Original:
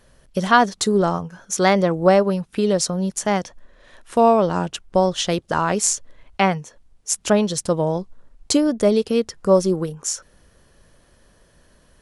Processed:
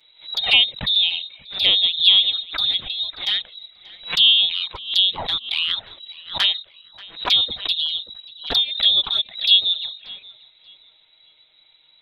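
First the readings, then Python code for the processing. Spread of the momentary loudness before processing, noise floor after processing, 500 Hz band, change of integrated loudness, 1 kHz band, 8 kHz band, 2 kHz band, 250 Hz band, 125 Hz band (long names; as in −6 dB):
11 LU, −56 dBFS, −24.0 dB, +2.5 dB, −15.0 dB, below −20 dB, 0.0 dB, below −25 dB, below −15 dB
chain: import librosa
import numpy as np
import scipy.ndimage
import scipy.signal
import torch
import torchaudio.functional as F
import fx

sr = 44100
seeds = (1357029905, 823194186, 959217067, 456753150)

p1 = fx.freq_invert(x, sr, carrier_hz=3900)
p2 = fx.env_flanger(p1, sr, rest_ms=6.7, full_db=-13.0)
p3 = p2 + fx.echo_filtered(p2, sr, ms=584, feedback_pct=44, hz=2600.0, wet_db=-18, dry=0)
y = fx.pre_swell(p3, sr, db_per_s=150.0)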